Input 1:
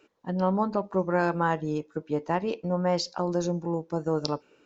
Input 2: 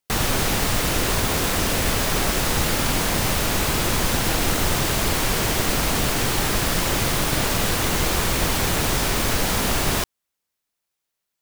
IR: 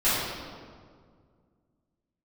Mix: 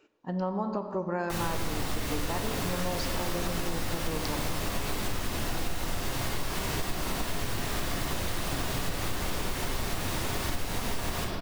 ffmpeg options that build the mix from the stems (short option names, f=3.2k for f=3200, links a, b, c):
-filter_complex "[0:a]volume=-3dB,asplit=2[a][b];[b]volume=-22.5dB[c];[1:a]flanger=delay=7:depth=8.8:regen=71:speed=0.82:shape=triangular,adelay=1200,volume=-8.5dB,asplit=2[d][e];[e]volume=-10dB[f];[2:a]atrim=start_sample=2205[g];[c][f]amix=inputs=2:normalize=0[h];[h][g]afir=irnorm=-1:irlink=0[i];[a][d][i]amix=inputs=3:normalize=0,acompressor=threshold=-27dB:ratio=4"